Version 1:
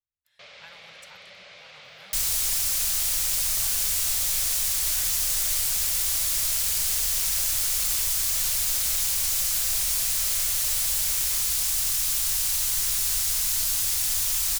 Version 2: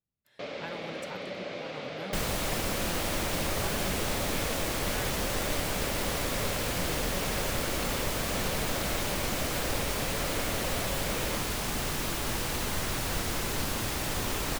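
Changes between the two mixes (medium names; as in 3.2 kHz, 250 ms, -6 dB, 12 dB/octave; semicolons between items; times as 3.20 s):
second sound: add tone controls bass -2 dB, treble -14 dB; master: remove amplifier tone stack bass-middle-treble 10-0-10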